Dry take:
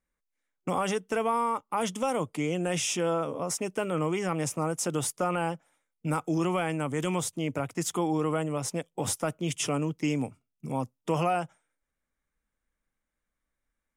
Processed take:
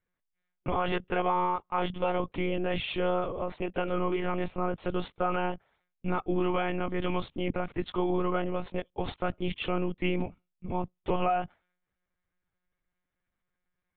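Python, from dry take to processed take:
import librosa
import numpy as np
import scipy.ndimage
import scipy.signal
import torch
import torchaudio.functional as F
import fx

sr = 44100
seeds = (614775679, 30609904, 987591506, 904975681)

y = fx.lpc_monotone(x, sr, seeds[0], pitch_hz=180.0, order=16)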